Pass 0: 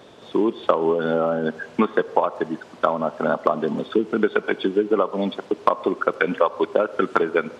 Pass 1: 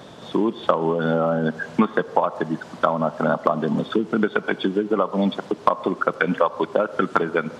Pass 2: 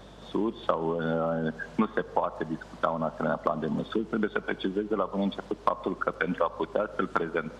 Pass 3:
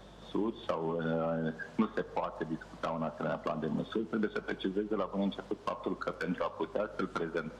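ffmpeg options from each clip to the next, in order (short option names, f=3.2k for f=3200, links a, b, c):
-filter_complex "[0:a]asplit=2[a][b];[b]acompressor=threshold=-27dB:ratio=6,volume=2.5dB[c];[a][c]amix=inputs=2:normalize=0,equalizer=f=160:t=o:w=0.67:g=6,equalizer=f=400:t=o:w=0.67:g=-5,equalizer=f=2.5k:t=o:w=0.67:g=-4,volume=-1.5dB"
-af "aeval=exprs='val(0)+0.00562*(sin(2*PI*50*n/s)+sin(2*PI*2*50*n/s)/2+sin(2*PI*3*50*n/s)/3+sin(2*PI*4*50*n/s)/4+sin(2*PI*5*50*n/s)/5)':c=same,volume=-7.5dB"
-filter_complex "[0:a]acrossover=split=470[a][b];[b]asoftclip=type=tanh:threshold=-24.5dB[c];[a][c]amix=inputs=2:normalize=0,flanger=delay=5.4:depth=6.5:regen=-70:speed=0.41:shape=sinusoidal"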